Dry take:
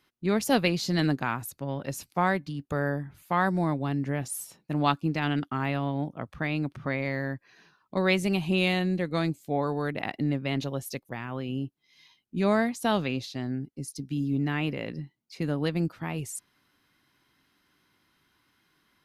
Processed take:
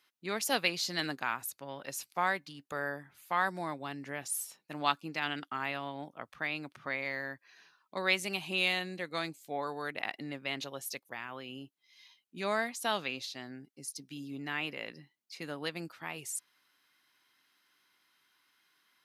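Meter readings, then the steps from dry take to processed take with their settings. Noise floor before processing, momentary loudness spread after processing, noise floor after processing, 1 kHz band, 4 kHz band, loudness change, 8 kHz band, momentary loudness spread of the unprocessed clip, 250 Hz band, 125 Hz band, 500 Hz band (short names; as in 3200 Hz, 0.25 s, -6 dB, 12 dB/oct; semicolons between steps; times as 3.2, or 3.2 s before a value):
-73 dBFS, 14 LU, -78 dBFS, -4.5 dB, -0.5 dB, -6.5 dB, 0.0 dB, 11 LU, -14.5 dB, -18.5 dB, -8.5 dB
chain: HPF 1300 Hz 6 dB/oct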